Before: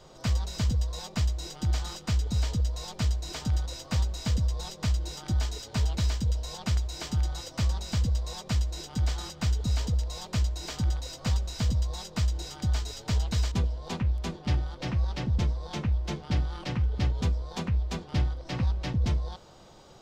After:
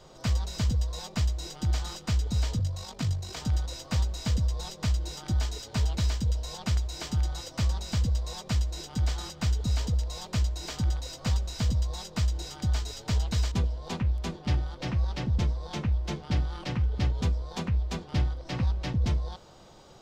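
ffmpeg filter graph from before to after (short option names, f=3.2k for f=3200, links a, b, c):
-filter_complex "[0:a]asettb=1/sr,asplit=3[a][b][c];[a]atrim=end=2.594[d];[b]atrim=start=2.59:end=3.37,asetpts=PTS-STARTPTS,afade=t=in:d=0.004:c=qsin,afade=t=out:st=0.776:d=0.004:c=qsin,tremolo=f=50:d=0.519,afreqshift=30[e];[c]atrim=start=3.366[f];[d][e]acrossfade=d=0.004:c1=hsin:c2=qsin[g];[g][f]acrossfade=d=0.004:c1=qsin:c2=hsin"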